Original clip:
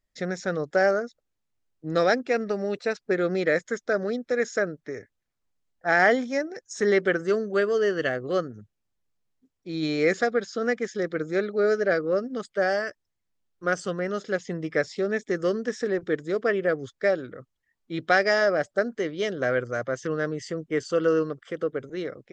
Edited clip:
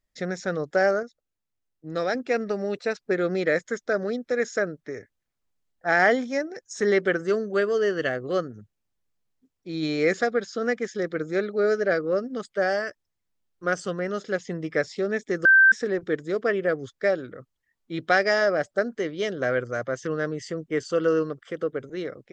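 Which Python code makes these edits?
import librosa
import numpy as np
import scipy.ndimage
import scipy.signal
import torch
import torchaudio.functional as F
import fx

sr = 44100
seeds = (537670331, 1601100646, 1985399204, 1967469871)

y = fx.edit(x, sr, fx.clip_gain(start_s=1.03, length_s=1.12, db=-5.0),
    fx.bleep(start_s=15.45, length_s=0.27, hz=1560.0, db=-11.5), tone=tone)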